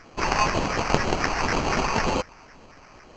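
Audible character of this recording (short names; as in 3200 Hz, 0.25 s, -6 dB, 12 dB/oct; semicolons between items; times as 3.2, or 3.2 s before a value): phasing stages 6, 2 Hz, lowest notch 350–2000 Hz; aliases and images of a low sample rate 3600 Hz, jitter 0%; µ-law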